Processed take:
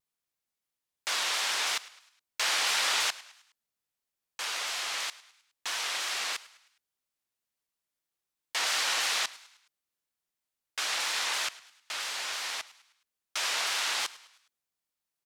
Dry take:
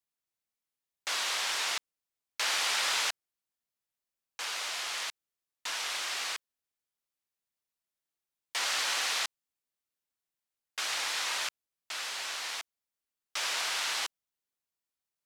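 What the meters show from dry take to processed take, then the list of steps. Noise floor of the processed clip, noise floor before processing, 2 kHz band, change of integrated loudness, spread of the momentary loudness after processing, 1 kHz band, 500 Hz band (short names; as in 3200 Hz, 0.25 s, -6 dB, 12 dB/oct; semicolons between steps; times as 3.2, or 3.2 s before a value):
under -85 dBFS, under -85 dBFS, +2.0 dB, +2.0 dB, 12 LU, +2.0 dB, +2.0 dB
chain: frequency-shifting echo 0.104 s, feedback 47%, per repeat +75 Hz, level -19 dB; shaped vibrato saw down 3 Hz, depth 100 cents; gain +2 dB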